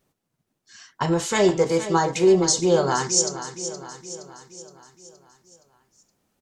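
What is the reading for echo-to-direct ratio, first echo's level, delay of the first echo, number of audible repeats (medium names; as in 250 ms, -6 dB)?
-10.5 dB, -12.0 dB, 469 ms, 5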